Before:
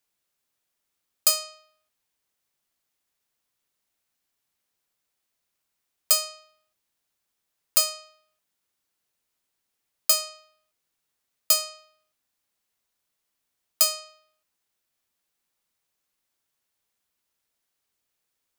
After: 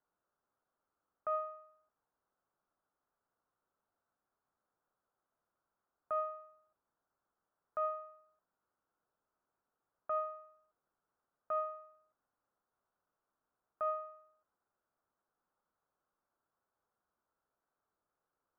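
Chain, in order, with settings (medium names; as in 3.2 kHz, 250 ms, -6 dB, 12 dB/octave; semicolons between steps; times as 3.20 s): peak limiter -15.5 dBFS, peak gain reduction 8.5 dB; elliptic low-pass 1.4 kHz, stop band 70 dB; bass shelf 410 Hz -7 dB; trim +4.5 dB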